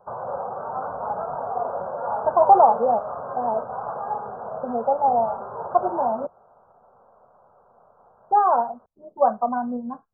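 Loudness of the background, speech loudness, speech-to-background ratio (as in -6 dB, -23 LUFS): -30.5 LUFS, -22.0 LUFS, 8.5 dB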